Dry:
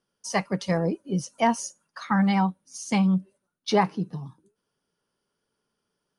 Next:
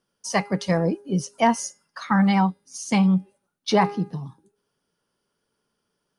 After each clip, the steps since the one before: de-hum 408.2 Hz, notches 13; trim +3 dB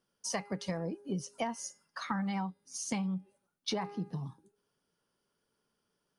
compression 12:1, threshold -27 dBFS, peak gain reduction 14.5 dB; trim -4.5 dB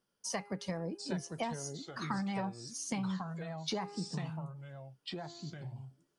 ever faster or slower copies 700 ms, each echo -3 st, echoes 2, each echo -6 dB; trim -2 dB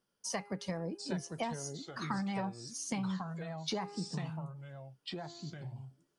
no audible change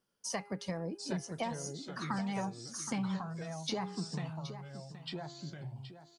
delay 772 ms -12 dB

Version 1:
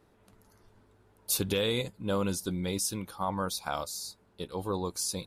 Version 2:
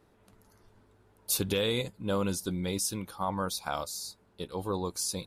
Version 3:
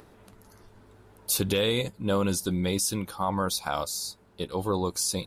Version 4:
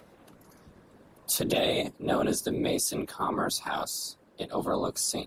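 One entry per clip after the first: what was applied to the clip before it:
no audible change
in parallel at +2 dB: peak limiter -23.5 dBFS, peak gain reduction 8 dB; on the sum: upward compressor, threshold -46 dBFS; trim -1.5 dB
frequency shift +110 Hz; whisper effect; trim -1.5 dB

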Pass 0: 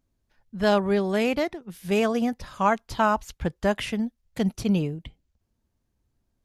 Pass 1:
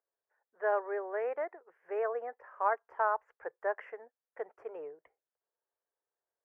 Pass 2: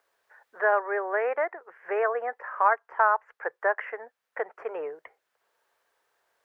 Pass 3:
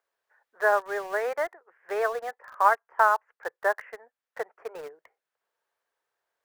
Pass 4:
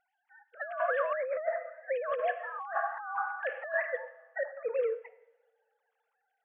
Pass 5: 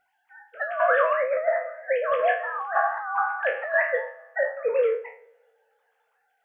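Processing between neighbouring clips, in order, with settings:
elliptic band-pass 440–1800 Hz, stop band 40 dB; trim -7 dB
peaking EQ 1.7 kHz +11.5 dB 2.7 oct; three bands compressed up and down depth 40%; trim +1.5 dB
in parallel at -11 dB: bit crusher 5-bit; on the sum: upward expansion 1.5:1, over -36 dBFS
formants replaced by sine waves; two-slope reverb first 0.86 s, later 2.6 s, from -25 dB, DRR 12.5 dB; compressor with a negative ratio -34 dBFS, ratio -1; trim +1 dB
spectral sustain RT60 0.37 s; trim +7.5 dB

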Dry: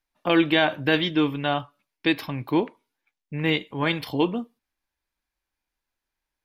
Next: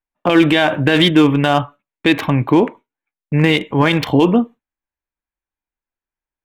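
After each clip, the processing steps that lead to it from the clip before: local Wiener filter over 9 samples; gate with hold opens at -41 dBFS; loudness maximiser +16.5 dB; trim -1 dB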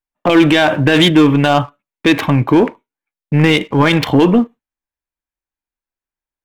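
waveshaping leveller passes 1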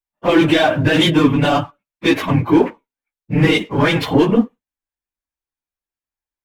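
phase randomisation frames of 50 ms; trim -3 dB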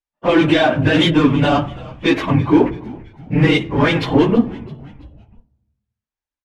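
distance through air 62 m; frequency-shifting echo 331 ms, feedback 46%, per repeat -82 Hz, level -20 dB; on a send at -18 dB: reverberation RT60 1.0 s, pre-delay 3 ms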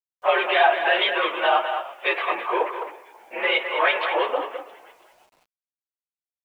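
speakerphone echo 210 ms, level -7 dB; mistuned SSB +59 Hz 520–3200 Hz; bit crusher 10-bit; trim -1 dB

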